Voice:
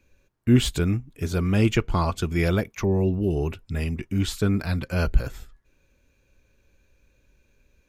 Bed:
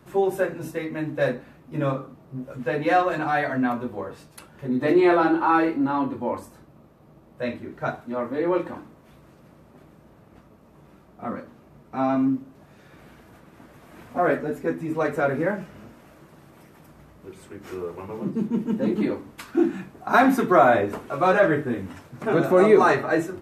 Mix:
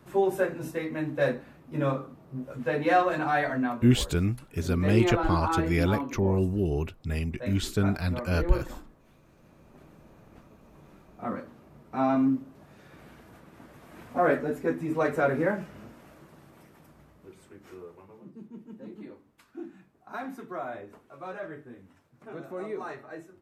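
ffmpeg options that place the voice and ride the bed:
ffmpeg -i stem1.wav -i stem2.wav -filter_complex "[0:a]adelay=3350,volume=-3dB[link_01];[1:a]volume=4.5dB,afade=type=out:start_time=3.46:duration=0.38:silence=0.473151,afade=type=in:start_time=9.27:duration=0.67:silence=0.446684,afade=type=out:start_time=16.06:duration=2.18:silence=0.125893[link_02];[link_01][link_02]amix=inputs=2:normalize=0" out.wav

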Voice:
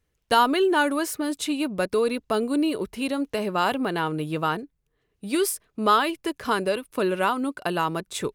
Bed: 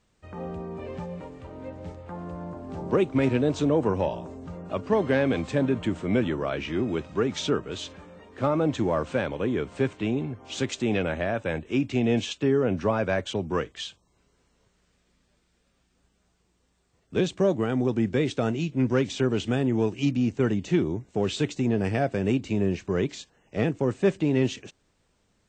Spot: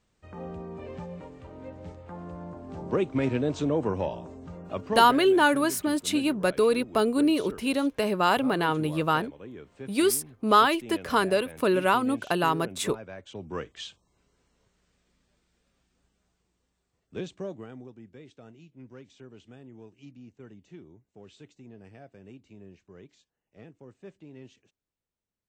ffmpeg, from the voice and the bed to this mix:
ffmpeg -i stem1.wav -i stem2.wav -filter_complex "[0:a]adelay=4650,volume=0.5dB[link_01];[1:a]volume=10dB,afade=type=out:start_time=4.82:duration=0.36:silence=0.223872,afade=type=in:start_time=13.21:duration=0.72:silence=0.211349,afade=type=out:start_time=15.79:duration=2.16:silence=0.0891251[link_02];[link_01][link_02]amix=inputs=2:normalize=0" out.wav

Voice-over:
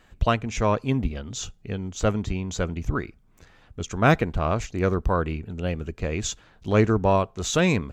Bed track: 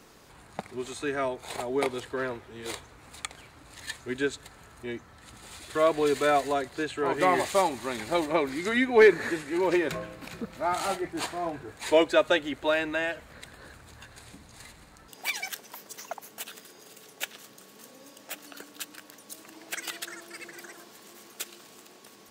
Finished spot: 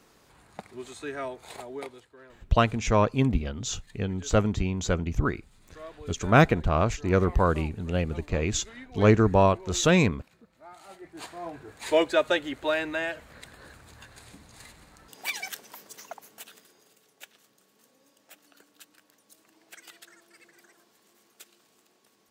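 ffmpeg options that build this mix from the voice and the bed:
ffmpeg -i stem1.wav -i stem2.wav -filter_complex "[0:a]adelay=2300,volume=0.5dB[link_01];[1:a]volume=14.5dB,afade=type=out:start_time=1.44:duration=0.65:silence=0.16788,afade=type=in:start_time=10.87:duration=1.1:silence=0.105925,afade=type=out:start_time=15.55:duration=1.47:silence=0.237137[link_02];[link_01][link_02]amix=inputs=2:normalize=0" out.wav

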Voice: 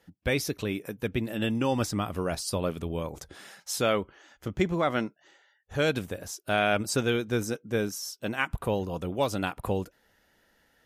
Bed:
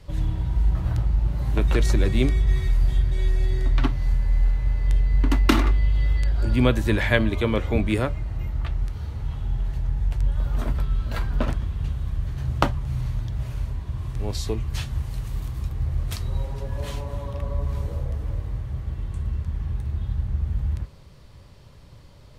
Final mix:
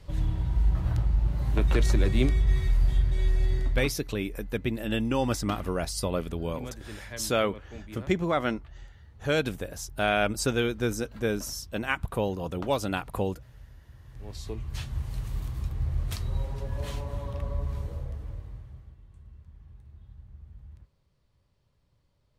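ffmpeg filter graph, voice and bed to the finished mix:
ffmpeg -i stem1.wav -i stem2.wav -filter_complex "[0:a]adelay=3500,volume=0dB[link_01];[1:a]volume=14.5dB,afade=type=out:start_time=3.53:duration=0.44:silence=0.125893,afade=type=in:start_time=14.03:duration=1.16:silence=0.133352,afade=type=out:start_time=17.34:duration=1.64:silence=0.112202[link_02];[link_01][link_02]amix=inputs=2:normalize=0" out.wav

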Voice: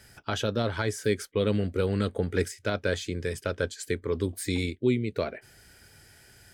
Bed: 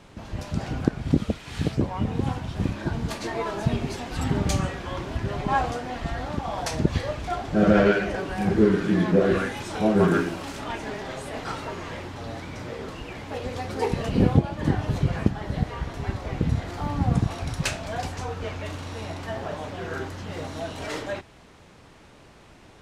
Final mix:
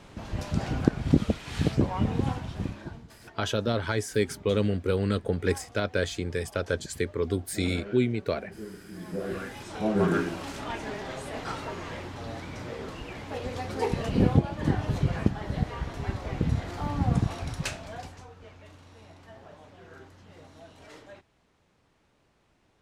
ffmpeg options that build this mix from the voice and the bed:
ffmpeg -i stem1.wav -i stem2.wav -filter_complex "[0:a]adelay=3100,volume=0.5dB[link_01];[1:a]volume=20dB,afade=type=out:start_time=2.07:duration=1:silence=0.0749894,afade=type=in:start_time=8.92:duration=1.46:silence=0.1,afade=type=out:start_time=17.28:duration=1.01:silence=0.188365[link_02];[link_01][link_02]amix=inputs=2:normalize=0" out.wav

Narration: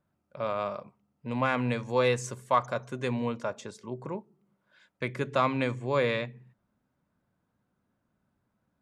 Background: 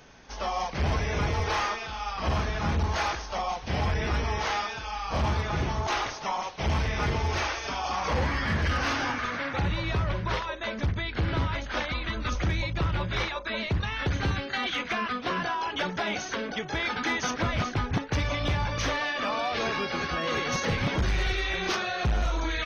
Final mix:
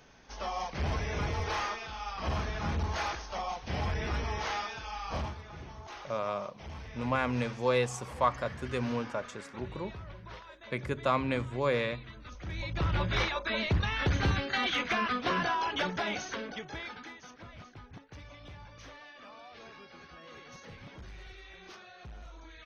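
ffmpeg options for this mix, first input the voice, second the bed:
ffmpeg -i stem1.wav -i stem2.wav -filter_complex "[0:a]adelay=5700,volume=-2.5dB[link_01];[1:a]volume=11.5dB,afade=type=out:start_time=5.13:duration=0.22:silence=0.251189,afade=type=in:start_time=12.41:duration=0.6:silence=0.141254,afade=type=out:start_time=15.54:duration=1.61:silence=0.0891251[link_02];[link_01][link_02]amix=inputs=2:normalize=0" out.wav

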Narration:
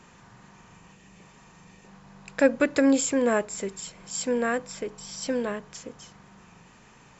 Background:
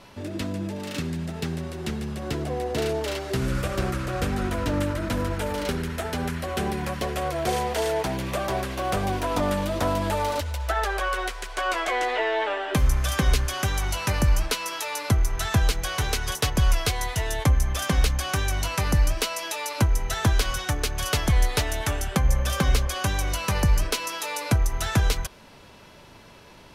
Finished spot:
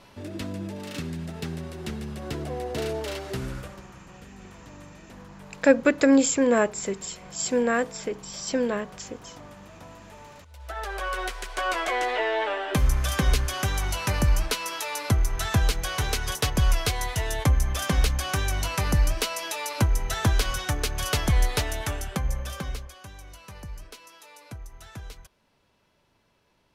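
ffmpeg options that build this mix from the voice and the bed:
ffmpeg -i stem1.wav -i stem2.wav -filter_complex "[0:a]adelay=3250,volume=2.5dB[link_01];[1:a]volume=18dB,afade=type=out:start_time=3.24:duration=0.58:silence=0.112202,afade=type=in:start_time=10.48:duration=0.85:silence=0.0841395,afade=type=out:start_time=21.45:duration=1.52:silence=0.125893[link_02];[link_01][link_02]amix=inputs=2:normalize=0" out.wav

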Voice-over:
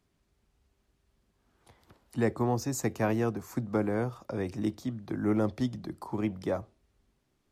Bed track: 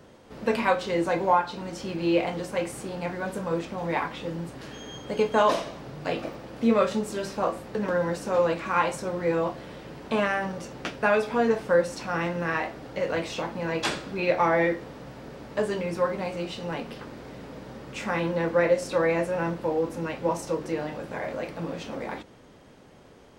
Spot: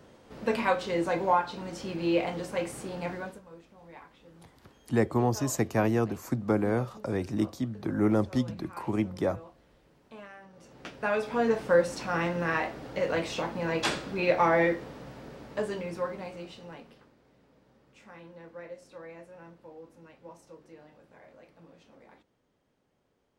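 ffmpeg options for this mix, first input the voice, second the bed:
ffmpeg -i stem1.wav -i stem2.wav -filter_complex "[0:a]adelay=2750,volume=2.5dB[link_01];[1:a]volume=18dB,afade=type=out:start_time=3.13:duration=0.28:silence=0.112202,afade=type=in:start_time=10.51:duration=1.2:silence=0.0891251,afade=type=out:start_time=14.61:duration=2.54:silence=0.0891251[link_02];[link_01][link_02]amix=inputs=2:normalize=0" out.wav

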